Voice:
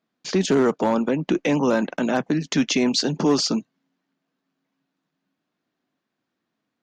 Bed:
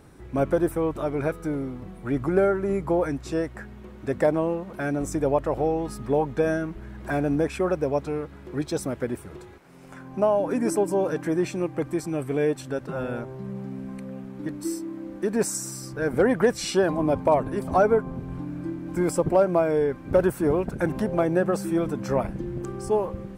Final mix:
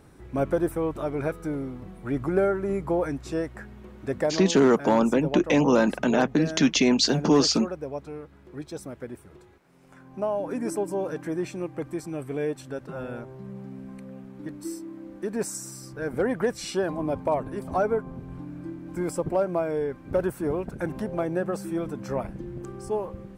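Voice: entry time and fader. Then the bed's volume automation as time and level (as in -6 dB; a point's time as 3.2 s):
4.05 s, 0.0 dB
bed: 4.18 s -2 dB
4.43 s -9 dB
9.83 s -9 dB
10.46 s -5 dB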